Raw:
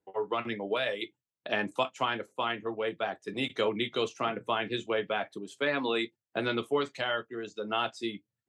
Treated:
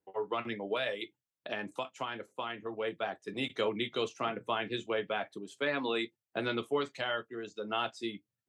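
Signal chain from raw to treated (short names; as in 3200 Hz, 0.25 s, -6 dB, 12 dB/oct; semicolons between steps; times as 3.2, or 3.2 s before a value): 0.99–2.73 compressor 2.5:1, threshold -32 dBFS, peak gain reduction 7 dB; gain -3 dB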